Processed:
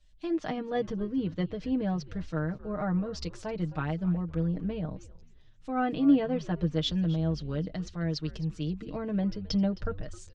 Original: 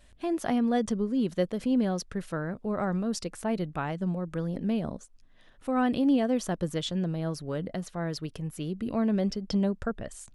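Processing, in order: low-pass 6.1 kHz 24 dB/octave; bass shelf 230 Hz +7.5 dB; low-pass that closes with the level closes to 2.8 kHz, closed at -22 dBFS; treble shelf 3.8 kHz +11 dB; comb 6.5 ms, depth 76%; frequency-shifting echo 264 ms, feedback 38%, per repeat -110 Hz, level -16.5 dB; three bands expanded up and down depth 40%; trim -6 dB

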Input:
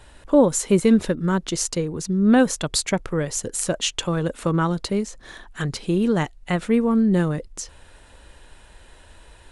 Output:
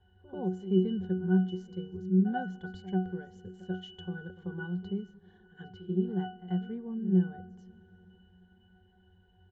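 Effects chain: pitch-class resonator F#, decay 0.37 s; reverse echo 89 ms -15 dB; on a send at -21 dB: reverberation RT60 4.1 s, pre-delay 46 ms; on the sum: resampled via 16 kHz; trim +2.5 dB

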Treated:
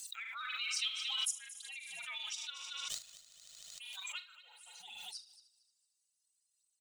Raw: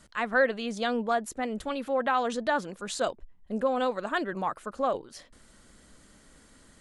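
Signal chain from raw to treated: expander on every frequency bin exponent 2; inverse Chebyshev high-pass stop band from 720 Hz, stop band 70 dB; 2.59–3.93 s: power-law waveshaper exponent 2; frequency shift -360 Hz; phaser 0.6 Hz, delay 3.3 ms, feedback 59%; doubling 43 ms -11.5 dB; on a send: multi-head delay 76 ms, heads first and third, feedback 44%, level -16 dB; on the sum: swell ahead of each attack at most 24 dB/s; trim +4.5 dB

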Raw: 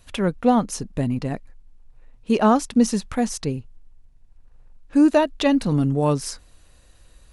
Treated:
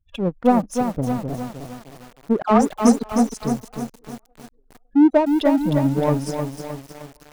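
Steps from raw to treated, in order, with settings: spectral gate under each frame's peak -15 dB strong; 2.42–3.03 s: phase dispersion lows, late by 90 ms, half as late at 960 Hz; feedback echo behind a band-pass 556 ms, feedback 32%, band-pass 760 Hz, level -18 dB; power-law waveshaper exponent 1.4; bit-crushed delay 309 ms, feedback 55%, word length 7-bit, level -6 dB; trim +4 dB

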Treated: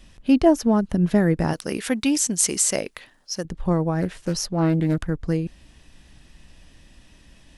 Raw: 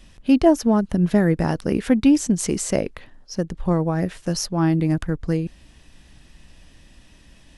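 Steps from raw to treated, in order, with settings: 1.53–3.45 s: tilt EQ +3 dB/octave; 4.01–4.97 s: loudspeaker Doppler distortion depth 0.27 ms; trim -1 dB

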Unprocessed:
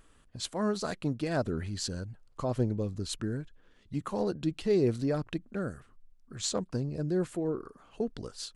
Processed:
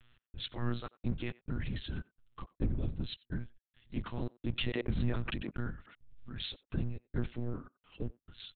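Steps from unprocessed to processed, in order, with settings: octave divider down 1 oct, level +4 dB; peaking EQ 660 Hz -10.5 dB 1.9 oct; trance gate "xx..xxxxxx..x" 172 bpm -60 dB; tilt shelf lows -5 dB, about 1.2 kHz; monotone LPC vocoder at 8 kHz 120 Hz; speakerphone echo 90 ms, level -22 dB; 4.58–6.61 s: swell ahead of each attack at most 35 dB/s

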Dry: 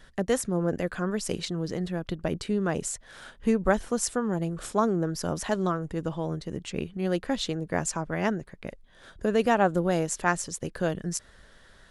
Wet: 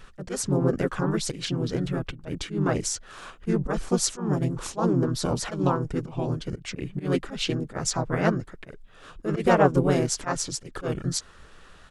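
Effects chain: slow attack 125 ms; harmony voices -5 st -2 dB, -4 st -1 dB

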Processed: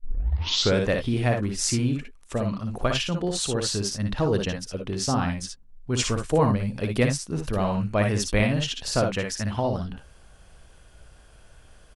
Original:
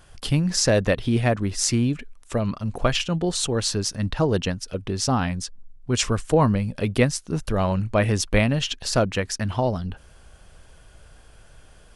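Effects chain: tape start-up on the opening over 0.82 s; on a send: early reflections 58 ms -5 dB, 73 ms -11 dB; on the sum: trim -3.5 dB

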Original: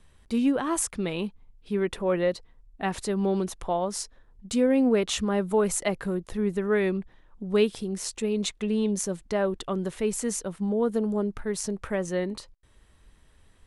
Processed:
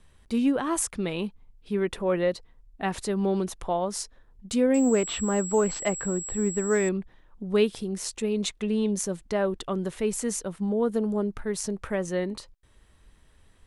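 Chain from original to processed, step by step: 4.74–6.89 s: class-D stage that switches slowly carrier 7.7 kHz

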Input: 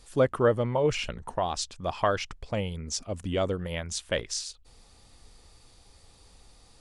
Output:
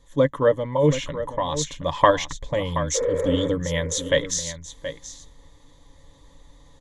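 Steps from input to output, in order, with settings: spectral replace 2.98–3.45 s, 350–2600 Hz after; in parallel at -2 dB: level held to a coarse grid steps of 24 dB; on the sum: comb 7 ms, depth 34%; gain riding 2 s; rippled EQ curve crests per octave 1.1, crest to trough 13 dB; on a send: delay 726 ms -11 dB; on the sum: tape noise reduction on one side only decoder only

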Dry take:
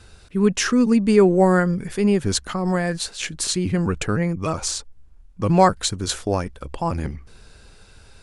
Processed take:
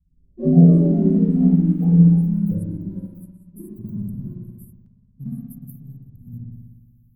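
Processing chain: gliding tape speed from 76% -> 154%; inverse Chebyshev band-stop 550–6700 Hz, stop band 50 dB; peaking EQ 170 Hz +8.5 dB 0.35 oct; in parallel at -12 dB: crossover distortion -28.5 dBFS; on the sum: tone controls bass +9 dB, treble +12 dB; spring tank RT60 2 s, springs 59 ms, chirp 40 ms, DRR -5 dB; ever faster or slower copies 87 ms, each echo +7 st, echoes 3, each echo -6 dB; upward expansion 1.5:1, over -23 dBFS; trim -12.5 dB

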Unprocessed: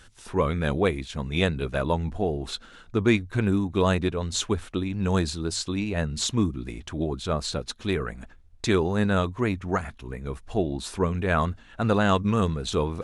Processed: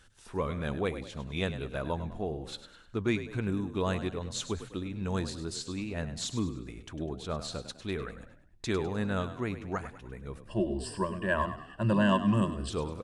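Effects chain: 10.44–12.70 s: rippled EQ curve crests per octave 1.3, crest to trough 18 dB; frequency-shifting echo 101 ms, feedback 42%, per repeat +39 Hz, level -12 dB; trim -8.5 dB

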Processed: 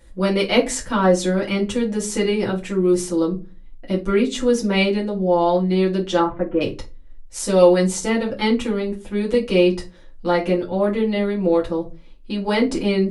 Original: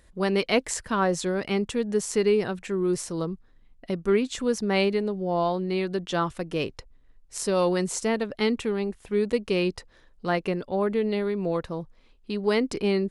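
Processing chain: 6.19–6.61 s: low-pass 1.8 kHz 24 dB/octave; reverberation, pre-delay 6 ms, DRR -5.5 dB; trim -1 dB

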